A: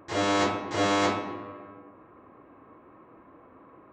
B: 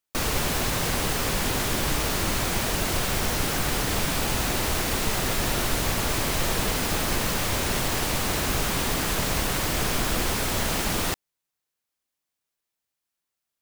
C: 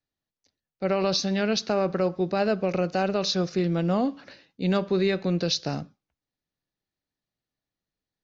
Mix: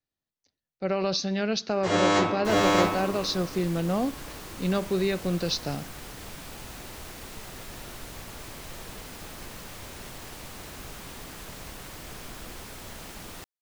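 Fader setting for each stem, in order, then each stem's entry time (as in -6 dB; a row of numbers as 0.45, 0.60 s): +2.0, -16.0, -2.5 dB; 1.75, 2.30, 0.00 s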